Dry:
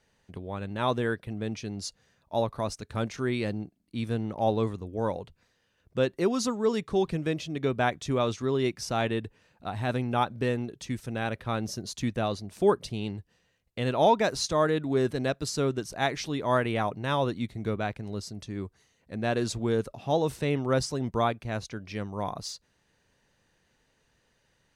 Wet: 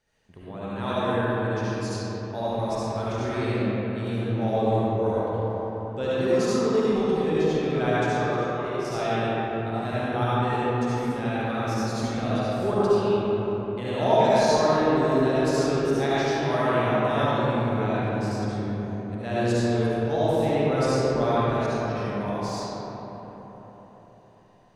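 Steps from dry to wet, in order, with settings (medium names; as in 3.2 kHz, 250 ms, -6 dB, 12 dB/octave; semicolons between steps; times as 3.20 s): 8.07–8.85 s: rippled Chebyshev high-pass 340 Hz, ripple 9 dB; reverberation RT60 4.4 s, pre-delay 30 ms, DRR -10.5 dB; trim -7 dB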